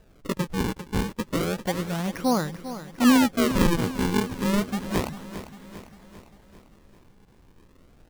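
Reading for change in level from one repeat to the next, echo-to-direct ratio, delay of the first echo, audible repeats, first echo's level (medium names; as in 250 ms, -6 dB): -5.5 dB, -11.0 dB, 398 ms, 5, -12.5 dB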